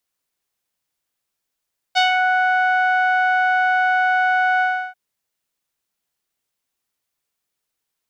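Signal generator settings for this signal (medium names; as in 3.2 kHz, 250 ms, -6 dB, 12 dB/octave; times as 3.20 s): synth note saw F#5 12 dB/octave, low-pass 1.6 kHz, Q 2.1, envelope 1.5 oct, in 0.28 s, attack 25 ms, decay 0.13 s, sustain -4 dB, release 0.33 s, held 2.66 s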